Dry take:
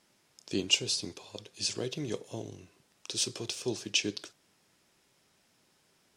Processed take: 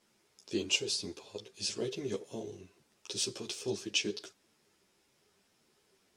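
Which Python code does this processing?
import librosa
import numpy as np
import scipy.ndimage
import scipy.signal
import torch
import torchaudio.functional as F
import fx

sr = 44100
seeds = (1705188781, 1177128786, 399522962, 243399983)

y = fx.peak_eq(x, sr, hz=400.0, db=6.0, octaves=0.38)
y = fx.ensemble(y, sr)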